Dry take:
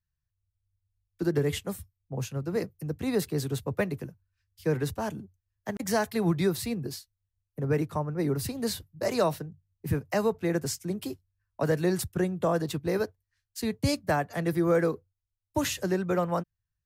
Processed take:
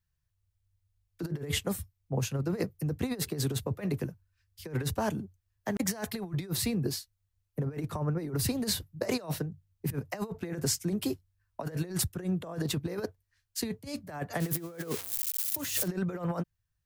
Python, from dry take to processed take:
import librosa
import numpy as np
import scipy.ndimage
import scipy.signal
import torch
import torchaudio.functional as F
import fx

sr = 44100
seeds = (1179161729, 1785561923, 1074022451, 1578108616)

y = fx.crossing_spikes(x, sr, level_db=-24.5, at=(14.4, 15.88))
y = fx.over_compress(y, sr, threshold_db=-31.0, ratio=-0.5)